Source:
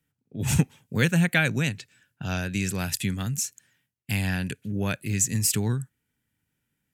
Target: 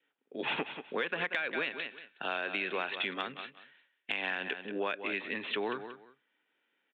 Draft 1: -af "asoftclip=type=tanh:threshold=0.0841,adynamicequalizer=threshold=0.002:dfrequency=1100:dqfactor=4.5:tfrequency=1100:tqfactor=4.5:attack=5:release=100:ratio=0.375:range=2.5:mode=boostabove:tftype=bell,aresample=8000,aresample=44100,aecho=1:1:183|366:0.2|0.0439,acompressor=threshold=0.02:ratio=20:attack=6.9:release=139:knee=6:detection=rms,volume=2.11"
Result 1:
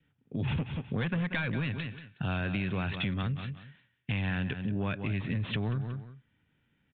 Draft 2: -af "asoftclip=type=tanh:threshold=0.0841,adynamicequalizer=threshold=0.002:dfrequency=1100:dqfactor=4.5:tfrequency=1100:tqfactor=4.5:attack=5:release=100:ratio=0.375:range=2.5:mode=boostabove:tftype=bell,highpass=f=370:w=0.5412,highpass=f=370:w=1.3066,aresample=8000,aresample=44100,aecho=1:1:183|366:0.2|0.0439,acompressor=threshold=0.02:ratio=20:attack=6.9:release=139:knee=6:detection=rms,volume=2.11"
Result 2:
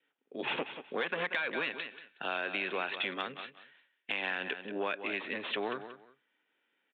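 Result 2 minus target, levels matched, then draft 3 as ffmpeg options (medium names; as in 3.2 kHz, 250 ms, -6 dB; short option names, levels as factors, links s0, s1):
saturation: distortion +8 dB
-af "asoftclip=type=tanh:threshold=0.211,adynamicequalizer=threshold=0.002:dfrequency=1100:dqfactor=4.5:tfrequency=1100:tqfactor=4.5:attack=5:release=100:ratio=0.375:range=2.5:mode=boostabove:tftype=bell,highpass=f=370:w=0.5412,highpass=f=370:w=1.3066,aresample=8000,aresample=44100,aecho=1:1:183|366:0.2|0.0439,acompressor=threshold=0.02:ratio=20:attack=6.9:release=139:knee=6:detection=rms,volume=2.11"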